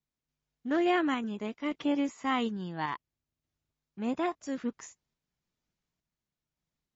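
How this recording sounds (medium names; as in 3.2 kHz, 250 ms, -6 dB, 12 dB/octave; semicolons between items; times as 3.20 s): random-step tremolo 3.5 Hz; MP3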